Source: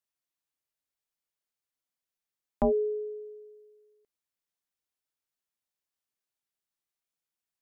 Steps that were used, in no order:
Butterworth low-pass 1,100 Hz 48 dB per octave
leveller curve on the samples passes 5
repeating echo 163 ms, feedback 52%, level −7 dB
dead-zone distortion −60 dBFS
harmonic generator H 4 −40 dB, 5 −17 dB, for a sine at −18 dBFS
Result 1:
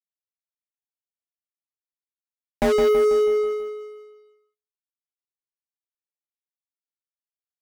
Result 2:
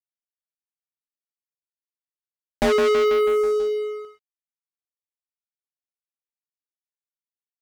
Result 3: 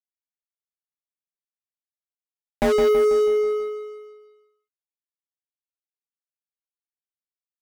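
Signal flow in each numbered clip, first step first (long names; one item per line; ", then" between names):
dead-zone distortion, then Butterworth low-pass, then leveller curve on the samples, then harmonic generator, then repeating echo
Butterworth low-pass, then harmonic generator, then repeating echo, then leveller curve on the samples, then dead-zone distortion
Butterworth low-pass, then leveller curve on the samples, then harmonic generator, then dead-zone distortion, then repeating echo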